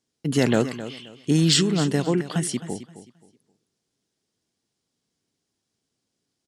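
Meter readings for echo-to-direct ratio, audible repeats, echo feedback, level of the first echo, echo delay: −13.0 dB, 2, 26%, −13.5 dB, 264 ms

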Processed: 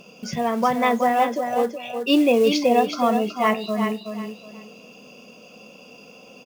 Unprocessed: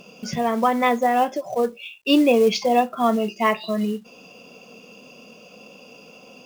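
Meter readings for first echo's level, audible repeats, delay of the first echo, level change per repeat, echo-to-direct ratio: −7.0 dB, 3, 372 ms, −12.0 dB, −6.5 dB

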